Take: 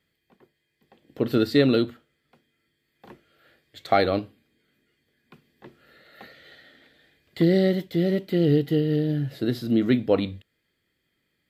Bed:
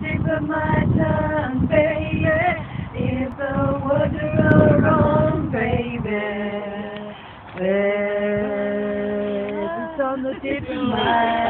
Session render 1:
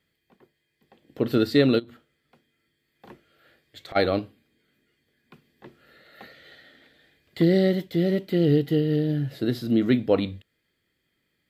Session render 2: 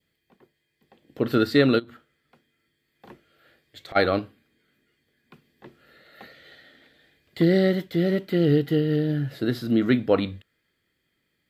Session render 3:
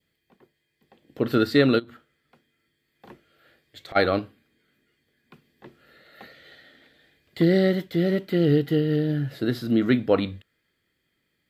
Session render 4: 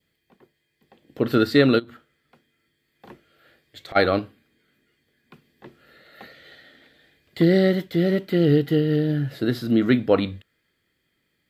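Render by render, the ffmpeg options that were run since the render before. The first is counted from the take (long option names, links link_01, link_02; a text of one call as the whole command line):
ffmpeg -i in.wav -filter_complex "[0:a]asplit=3[link_01][link_02][link_03];[link_01]afade=type=out:start_time=1.78:duration=0.02[link_04];[link_02]acompressor=threshold=-37dB:ratio=12:attack=3.2:release=140:knee=1:detection=peak,afade=type=in:start_time=1.78:duration=0.02,afade=type=out:start_time=3.95:duration=0.02[link_05];[link_03]afade=type=in:start_time=3.95:duration=0.02[link_06];[link_04][link_05][link_06]amix=inputs=3:normalize=0" out.wav
ffmpeg -i in.wav -af "adynamicequalizer=threshold=0.00562:dfrequency=1400:dqfactor=1.5:tfrequency=1400:tqfactor=1.5:attack=5:release=100:ratio=0.375:range=3.5:mode=boostabove:tftype=bell" out.wav
ffmpeg -i in.wav -af anull out.wav
ffmpeg -i in.wav -af "volume=2dB" out.wav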